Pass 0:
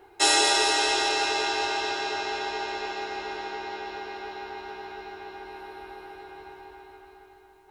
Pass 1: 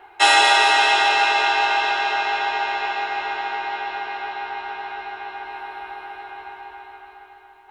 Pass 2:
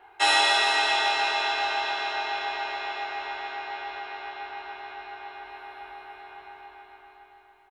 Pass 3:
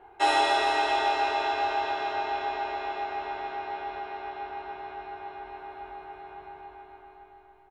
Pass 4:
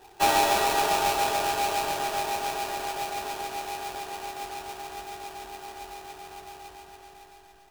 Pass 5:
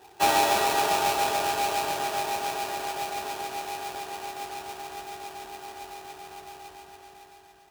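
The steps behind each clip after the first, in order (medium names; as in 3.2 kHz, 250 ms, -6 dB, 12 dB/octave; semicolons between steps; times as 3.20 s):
high-order bell 1.5 kHz +13 dB 2.8 oct; trim -3 dB
early reflections 22 ms -6.5 dB, 64 ms -8.5 dB; trim -7.5 dB
tilt shelf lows +9 dB, about 850 Hz; on a send at -17 dB: reverberation, pre-delay 4 ms
square wave that keeps the level; band-stop 2.1 kHz, Q 8.5; echo whose repeats swap between lows and highs 338 ms, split 1.8 kHz, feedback 59%, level -9 dB; trim -3 dB
high-pass 71 Hz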